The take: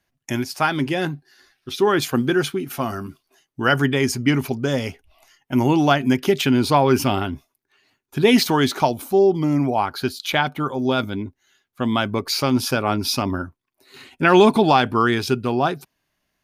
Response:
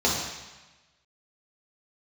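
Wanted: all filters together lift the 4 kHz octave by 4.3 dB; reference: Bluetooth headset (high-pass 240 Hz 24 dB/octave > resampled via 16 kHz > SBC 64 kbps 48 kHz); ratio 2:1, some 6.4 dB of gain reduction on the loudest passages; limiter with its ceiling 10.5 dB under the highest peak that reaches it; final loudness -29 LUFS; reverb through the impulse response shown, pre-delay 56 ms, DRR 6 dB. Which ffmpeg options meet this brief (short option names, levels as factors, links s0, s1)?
-filter_complex "[0:a]equalizer=f=4000:t=o:g=5.5,acompressor=threshold=0.0891:ratio=2,alimiter=limit=0.133:level=0:latency=1,asplit=2[s0][s1];[1:a]atrim=start_sample=2205,adelay=56[s2];[s1][s2]afir=irnorm=-1:irlink=0,volume=0.0891[s3];[s0][s3]amix=inputs=2:normalize=0,highpass=f=240:w=0.5412,highpass=f=240:w=1.3066,aresample=16000,aresample=44100,volume=0.841" -ar 48000 -c:a sbc -b:a 64k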